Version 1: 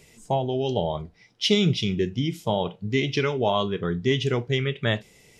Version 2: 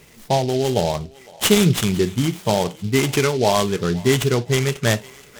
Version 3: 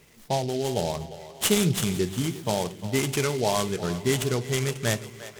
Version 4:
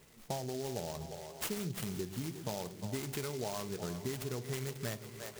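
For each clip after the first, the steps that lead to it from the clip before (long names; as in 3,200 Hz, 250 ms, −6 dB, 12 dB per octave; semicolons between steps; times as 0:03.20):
feedback echo with a high-pass in the loop 508 ms, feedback 61%, high-pass 740 Hz, level −20 dB; short delay modulated by noise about 3,800 Hz, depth 0.052 ms; level +5.5 dB
echo with a time of its own for lows and highs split 380 Hz, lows 128 ms, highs 352 ms, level −14 dB; dynamic equaliser 9,600 Hz, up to +5 dB, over −39 dBFS, Q 0.81; level −7.5 dB
downward compressor, threshold −31 dBFS, peak gain reduction 13.5 dB; short delay modulated by noise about 5,000 Hz, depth 0.074 ms; level −4.5 dB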